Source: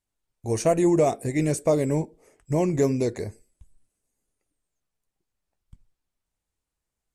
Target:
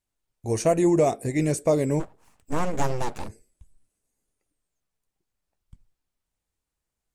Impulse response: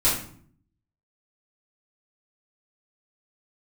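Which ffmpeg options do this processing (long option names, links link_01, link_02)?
-filter_complex "[0:a]asplit=3[link_01][link_02][link_03];[link_01]afade=type=out:start_time=1.99:duration=0.02[link_04];[link_02]aeval=exprs='abs(val(0))':channel_layout=same,afade=type=in:start_time=1.99:duration=0.02,afade=type=out:start_time=3.28:duration=0.02[link_05];[link_03]afade=type=in:start_time=3.28:duration=0.02[link_06];[link_04][link_05][link_06]amix=inputs=3:normalize=0"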